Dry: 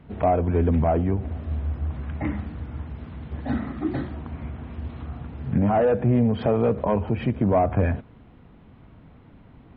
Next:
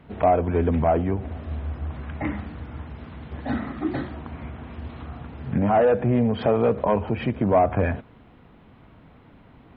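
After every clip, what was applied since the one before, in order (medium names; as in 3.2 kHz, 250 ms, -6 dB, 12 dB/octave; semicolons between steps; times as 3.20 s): bass shelf 300 Hz -7 dB; trim +3.5 dB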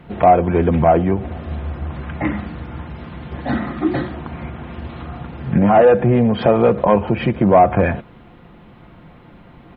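comb 5.7 ms, depth 37%; trim +7 dB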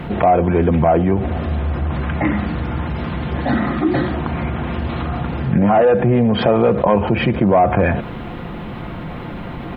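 level flattener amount 50%; trim -3 dB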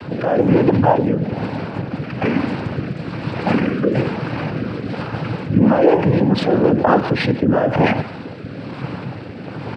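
noise-vocoded speech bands 8; speakerphone echo 150 ms, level -18 dB; rotary cabinet horn 1.1 Hz; trim +2.5 dB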